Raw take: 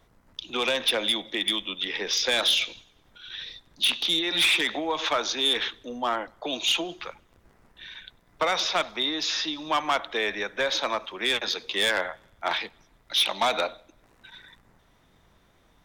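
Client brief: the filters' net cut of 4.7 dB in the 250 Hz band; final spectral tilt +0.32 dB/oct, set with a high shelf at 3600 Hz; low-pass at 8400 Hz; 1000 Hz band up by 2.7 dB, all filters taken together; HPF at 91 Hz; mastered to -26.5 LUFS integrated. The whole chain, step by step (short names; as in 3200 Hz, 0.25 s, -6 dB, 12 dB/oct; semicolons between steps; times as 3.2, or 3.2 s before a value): HPF 91 Hz; LPF 8400 Hz; bell 250 Hz -7 dB; bell 1000 Hz +3.5 dB; high shelf 3600 Hz +4 dB; gain -3 dB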